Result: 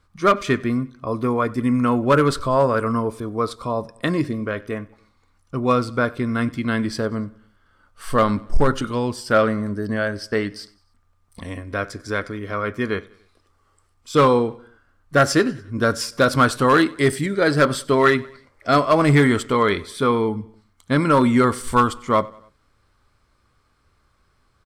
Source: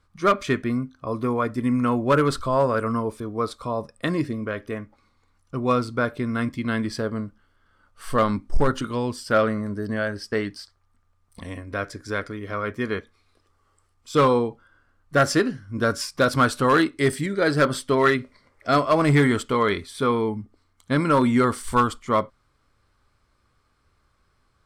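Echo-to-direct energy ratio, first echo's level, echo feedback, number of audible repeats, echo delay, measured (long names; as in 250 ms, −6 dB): −22.0 dB, −23.0 dB, 49%, 2, 95 ms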